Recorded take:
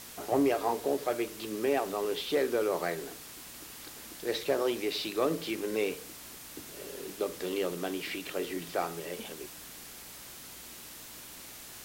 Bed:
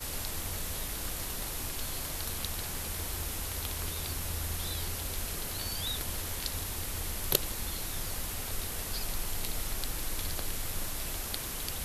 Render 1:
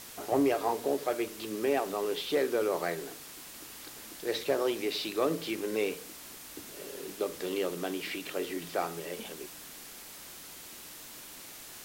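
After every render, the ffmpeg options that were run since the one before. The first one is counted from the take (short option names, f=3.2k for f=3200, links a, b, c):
-af "bandreject=f=60:t=h:w=4,bandreject=f=120:t=h:w=4,bandreject=f=180:t=h:w=4,bandreject=f=240:t=h:w=4"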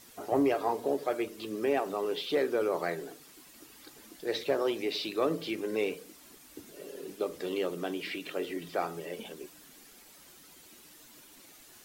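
-af "afftdn=nr=10:nf=-47"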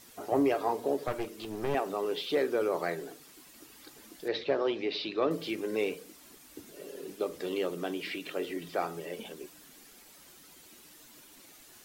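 -filter_complex "[0:a]asettb=1/sr,asplit=3[a][b][c];[a]atrim=end=1.074[d];[b]atrim=start=1.07:end=1.75,asetpts=PTS-STARTPTS,afade=t=in:d=0.004:c=qsin,afade=t=out:st=0.676:d=0.004:c=qsin,aeval=exprs='clip(val(0),-1,0.0112)':c=same[e];[c]atrim=start=1.746[f];[d][e]acrossfade=d=0.004:c1=hsin:c2=qsin[g];[g][f]acrossfade=d=0.004:c1=qsin:c2=hsin,asettb=1/sr,asplit=3[h][i][j];[h]atrim=end=4.284[k];[i]atrim=start=4.28:end=5.31,asetpts=PTS-STARTPTS,afade=t=in:d=0.004:c=qsin,afade=t=out:st=1.026:d=0.004:c=qsin,lowpass=f=4.7k:w=0.5412,lowpass=f=4.7k:w=1.3066[l];[j]atrim=start=5.306[m];[k][l]acrossfade=d=0.004:c1=hsin:c2=qsin[n];[n][m]acrossfade=d=0.004:c1=qsin:c2=hsin"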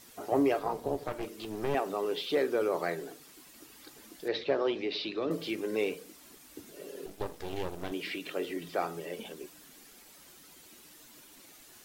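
-filter_complex "[0:a]asettb=1/sr,asplit=3[a][b][c];[a]atrim=end=0.594[d];[b]atrim=start=0.59:end=1.23,asetpts=PTS-STARTPTS,afade=t=in:d=0.004:c=qsin,afade=t=out:st=0.636:d=0.004:c=qsin,tremolo=f=300:d=0.71[e];[c]atrim=start=1.226[f];[d][e]acrossfade=d=0.004:c1=hsin:c2=qsin[g];[g][f]acrossfade=d=0.004:c1=qsin:c2=hsin,asettb=1/sr,asplit=3[h][i][j];[h]atrim=end=4.754[k];[i]atrim=start=4.75:end=5.3,asetpts=PTS-STARTPTS,afade=t=in:d=0.004:c=qsin,afade=t=out:st=0.546:d=0.004:c=qsin,acrossover=split=370|3000[l][m][n];[m]acompressor=threshold=-34dB:ratio=6:attack=3.2:release=140:knee=2.83:detection=peak[o];[l][o][n]amix=inputs=3:normalize=0[p];[j]atrim=start=5.296[q];[k][p]acrossfade=d=0.004:c1=hsin:c2=qsin[r];[r][q]acrossfade=d=0.004:c1=qsin:c2=hsin,asettb=1/sr,asplit=3[s][t][u];[s]atrim=end=7.064[v];[t]atrim=start=7.06:end=7.92,asetpts=PTS-STARTPTS,afade=t=in:d=0.004:c=qsin,afade=t=out:st=0.856:d=0.004:c=qsin,aeval=exprs='max(val(0),0)':c=same[w];[u]atrim=start=7.916[x];[v][w]acrossfade=d=0.004:c1=hsin:c2=qsin[y];[y][x]acrossfade=d=0.004:c1=qsin:c2=hsin"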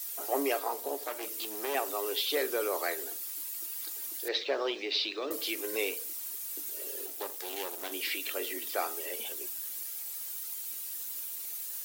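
-af "highpass=f=270:w=0.5412,highpass=f=270:w=1.3066,aemphasis=mode=production:type=riaa"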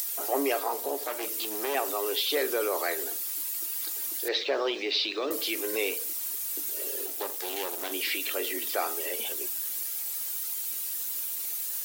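-filter_complex "[0:a]asplit=2[a][b];[b]alimiter=level_in=5dB:limit=-24dB:level=0:latency=1:release=20,volume=-5dB,volume=-0.5dB[c];[a][c]amix=inputs=2:normalize=0,acompressor=mode=upward:threshold=-31dB:ratio=2.5"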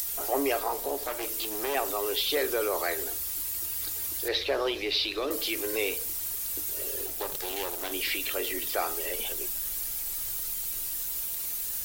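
-filter_complex "[1:a]volume=-14.5dB[a];[0:a][a]amix=inputs=2:normalize=0"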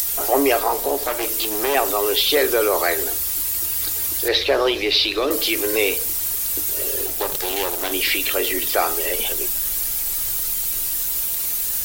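-af "volume=10dB"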